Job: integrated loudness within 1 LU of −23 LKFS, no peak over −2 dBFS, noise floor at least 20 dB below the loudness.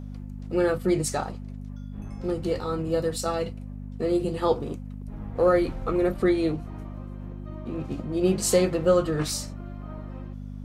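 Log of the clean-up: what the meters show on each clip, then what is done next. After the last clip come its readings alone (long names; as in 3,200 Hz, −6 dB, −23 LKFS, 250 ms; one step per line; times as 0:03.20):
mains hum 50 Hz; hum harmonics up to 250 Hz; level of the hum −35 dBFS; integrated loudness −26.0 LKFS; sample peak −9.0 dBFS; target loudness −23.0 LKFS
→ hum removal 50 Hz, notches 5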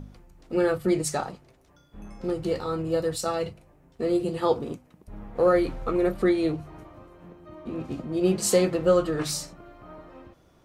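mains hum none found; integrated loudness −26.0 LKFS; sample peak −9.5 dBFS; target loudness −23.0 LKFS
→ level +3 dB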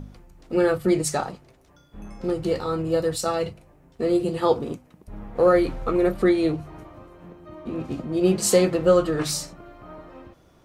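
integrated loudness −23.0 LKFS; sample peak −6.5 dBFS; background noise floor −56 dBFS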